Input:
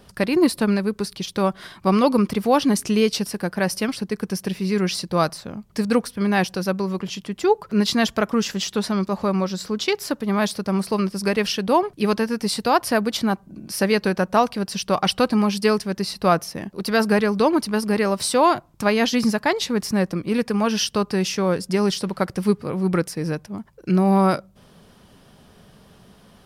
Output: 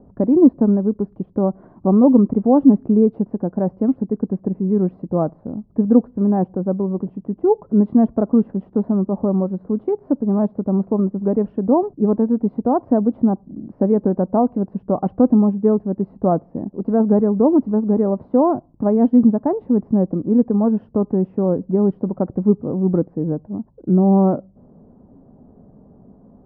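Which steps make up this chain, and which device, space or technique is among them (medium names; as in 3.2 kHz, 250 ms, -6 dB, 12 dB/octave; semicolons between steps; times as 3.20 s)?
under water (low-pass 790 Hz 24 dB/octave; peaking EQ 260 Hz +9 dB 0.51 oct); trim +1.5 dB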